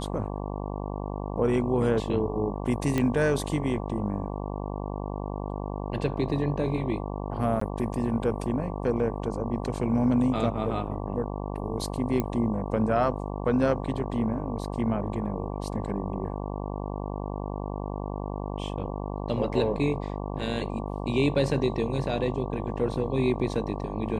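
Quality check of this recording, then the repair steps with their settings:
mains buzz 50 Hz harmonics 23 −33 dBFS
0:02.98: click −13 dBFS
0:07.60–0:07.61: drop-out 14 ms
0:12.20: click −14 dBFS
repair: click removal
hum removal 50 Hz, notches 23
repair the gap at 0:07.60, 14 ms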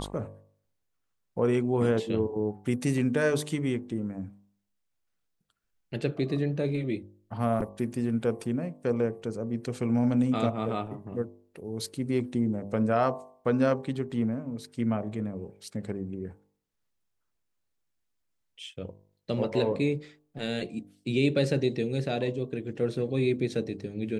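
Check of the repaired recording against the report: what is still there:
none of them is left

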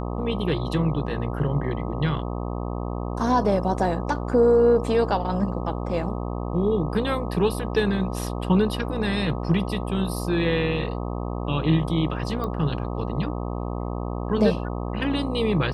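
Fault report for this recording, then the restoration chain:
mains buzz 60 Hz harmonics 21 −29 dBFS
0:12.44: click −19 dBFS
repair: click removal
hum removal 60 Hz, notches 21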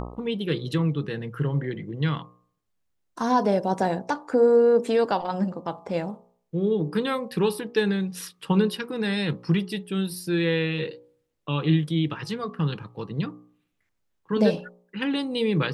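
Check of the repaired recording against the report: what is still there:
none of them is left

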